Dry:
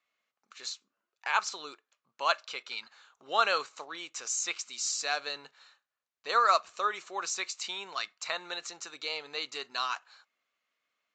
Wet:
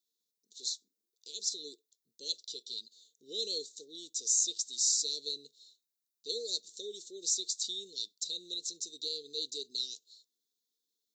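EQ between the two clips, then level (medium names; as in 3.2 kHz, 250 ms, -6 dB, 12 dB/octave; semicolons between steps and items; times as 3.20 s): Chebyshev band-stop 460–3600 Hz, order 5; RIAA curve recording; tilt EQ -2 dB/octave; 0.0 dB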